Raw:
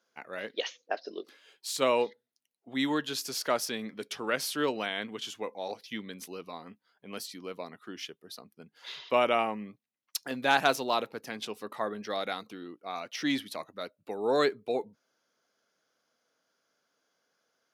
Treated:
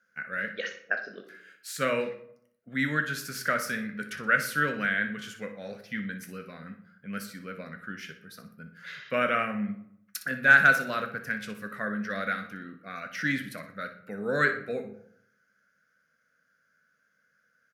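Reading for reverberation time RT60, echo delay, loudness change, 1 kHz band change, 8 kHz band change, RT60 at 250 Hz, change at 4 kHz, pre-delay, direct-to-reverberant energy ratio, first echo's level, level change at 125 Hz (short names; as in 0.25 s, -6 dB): 0.70 s, 61 ms, +4.0 dB, -0.5 dB, -2.5 dB, 0.75 s, -6.0 dB, 9 ms, 5.5 dB, -12.5 dB, +9.5 dB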